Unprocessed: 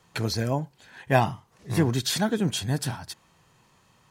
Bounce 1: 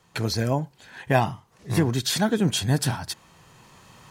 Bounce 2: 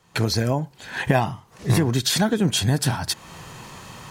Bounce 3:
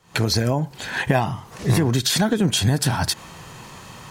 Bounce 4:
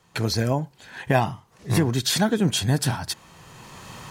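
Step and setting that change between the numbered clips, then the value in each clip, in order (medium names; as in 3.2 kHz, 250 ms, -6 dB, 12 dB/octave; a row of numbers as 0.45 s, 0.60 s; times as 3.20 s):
recorder AGC, rising by: 5.5 dB/s, 35 dB/s, 90 dB/s, 14 dB/s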